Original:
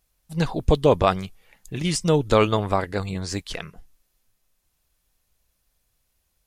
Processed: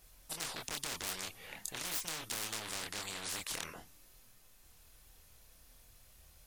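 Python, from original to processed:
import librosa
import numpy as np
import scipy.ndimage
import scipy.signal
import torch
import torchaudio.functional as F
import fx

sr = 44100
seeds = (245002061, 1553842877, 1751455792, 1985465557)

y = np.clip(10.0 ** (22.0 / 20.0) * x, -1.0, 1.0) / 10.0 ** (22.0 / 20.0)
y = fx.chorus_voices(y, sr, voices=4, hz=0.46, base_ms=26, depth_ms=2.3, mix_pct=40)
y = fx.spectral_comp(y, sr, ratio=10.0)
y = y * 10.0 ** (1.0 / 20.0)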